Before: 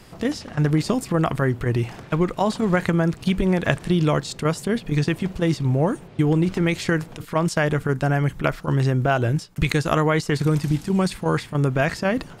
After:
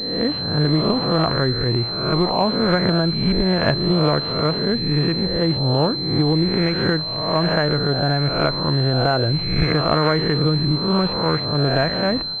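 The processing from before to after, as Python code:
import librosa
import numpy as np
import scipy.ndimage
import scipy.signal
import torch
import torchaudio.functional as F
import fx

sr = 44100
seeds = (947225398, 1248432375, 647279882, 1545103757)

y = fx.spec_swells(x, sr, rise_s=0.91)
y = fx.pwm(y, sr, carrier_hz=4100.0)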